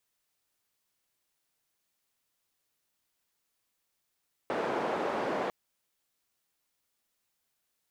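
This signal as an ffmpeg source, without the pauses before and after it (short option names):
-f lavfi -i "anoisesrc=c=white:d=1:r=44100:seed=1,highpass=f=300,lowpass=f=760,volume=-11dB"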